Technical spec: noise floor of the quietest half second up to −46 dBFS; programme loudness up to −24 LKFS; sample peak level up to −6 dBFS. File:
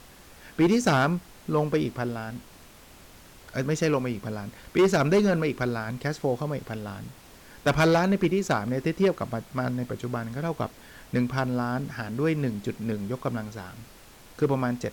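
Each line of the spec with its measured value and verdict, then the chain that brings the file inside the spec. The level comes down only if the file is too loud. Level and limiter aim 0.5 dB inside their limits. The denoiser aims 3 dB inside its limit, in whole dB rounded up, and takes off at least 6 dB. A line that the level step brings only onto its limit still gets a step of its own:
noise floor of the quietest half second −50 dBFS: in spec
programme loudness −27.0 LKFS: in spec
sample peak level −14.5 dBFS: in spec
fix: no processing needed

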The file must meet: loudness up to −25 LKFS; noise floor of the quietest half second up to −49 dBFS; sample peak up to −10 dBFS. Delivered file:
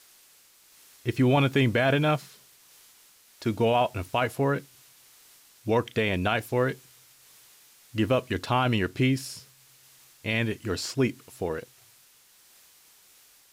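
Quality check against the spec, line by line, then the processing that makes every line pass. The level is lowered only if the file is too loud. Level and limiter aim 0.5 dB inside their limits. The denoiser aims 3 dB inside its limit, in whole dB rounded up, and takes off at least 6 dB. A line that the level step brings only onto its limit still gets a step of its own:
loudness −26.5 LKFS: in spec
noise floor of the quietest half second −58 dBFS: in spec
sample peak −12.5 dBFS: in spec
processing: no processing needed

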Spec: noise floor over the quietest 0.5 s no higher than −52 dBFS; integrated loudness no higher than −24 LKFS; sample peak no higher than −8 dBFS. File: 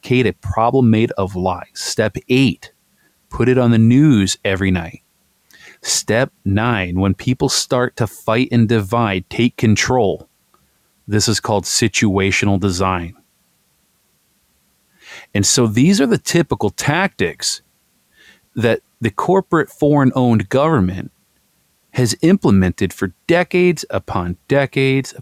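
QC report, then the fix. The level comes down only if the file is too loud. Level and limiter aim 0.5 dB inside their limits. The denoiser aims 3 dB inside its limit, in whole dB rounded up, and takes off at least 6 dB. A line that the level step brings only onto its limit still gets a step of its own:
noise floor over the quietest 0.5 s −61 dBFS: in spec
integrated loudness −16.0 LKFS: out of spec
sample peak −3.0 dBFS: out of spec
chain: level −8.5 dB

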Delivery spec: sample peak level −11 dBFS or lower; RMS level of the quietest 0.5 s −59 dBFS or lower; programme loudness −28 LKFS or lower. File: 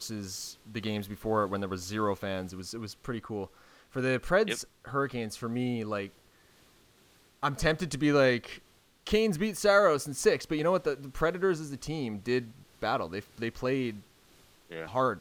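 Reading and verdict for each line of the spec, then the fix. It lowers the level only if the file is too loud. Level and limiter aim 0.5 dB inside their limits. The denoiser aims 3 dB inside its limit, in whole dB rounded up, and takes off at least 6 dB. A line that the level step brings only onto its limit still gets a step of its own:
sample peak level −10.0 dBFS: out of spec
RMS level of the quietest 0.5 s −62 dBFS: in spec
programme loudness −30.5 LKFS: in spec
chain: brickwall limiter −11.5 dBFS

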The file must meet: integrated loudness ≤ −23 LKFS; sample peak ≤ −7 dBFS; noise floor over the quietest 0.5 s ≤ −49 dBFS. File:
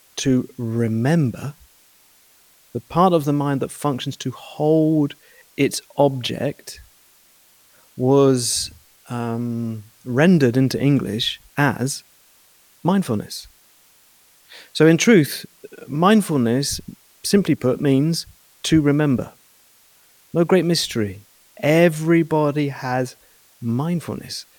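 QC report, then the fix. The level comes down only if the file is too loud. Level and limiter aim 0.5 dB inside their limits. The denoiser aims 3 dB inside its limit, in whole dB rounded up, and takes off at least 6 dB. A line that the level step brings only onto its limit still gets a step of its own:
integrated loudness −19.5 LKFS: out of spec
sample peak −2.5 dBFS: out of spec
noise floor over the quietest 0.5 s −54 dBFS: in spec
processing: level −4 dB
brickwall limiter −7.5 dBFS

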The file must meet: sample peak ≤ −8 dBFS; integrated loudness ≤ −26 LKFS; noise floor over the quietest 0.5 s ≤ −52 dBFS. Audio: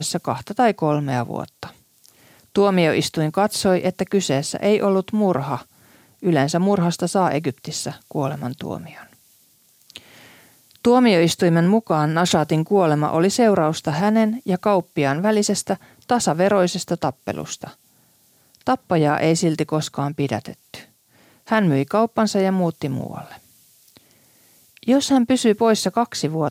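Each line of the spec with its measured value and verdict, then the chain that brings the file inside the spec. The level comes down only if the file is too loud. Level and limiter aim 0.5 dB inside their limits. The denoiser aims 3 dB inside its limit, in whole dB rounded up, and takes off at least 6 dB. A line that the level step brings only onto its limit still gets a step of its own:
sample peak −5.5 dBFS: out of spec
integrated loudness −20.0 LKFS: out of spec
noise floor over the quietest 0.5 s −58 dBFS: in spec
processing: level −6.5 dB

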